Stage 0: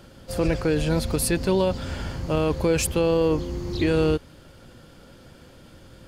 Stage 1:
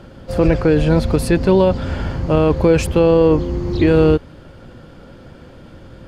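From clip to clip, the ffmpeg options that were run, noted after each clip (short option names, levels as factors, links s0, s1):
-af "lowpass=f=1700:p=1,volume=2.82"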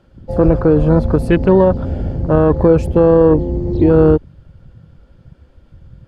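-af "afwtdn=0.0562,volume=1.33"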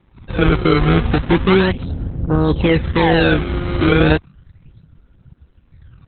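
-af "acrusher=samples=28:mix=1:aa=0.000001:lfo=1:lforange=44.8:lforate=0.34,equalizer=f=590:w=5:g=-15,volume=0.891" -ar 48000 -c:a libopus -b:a 8k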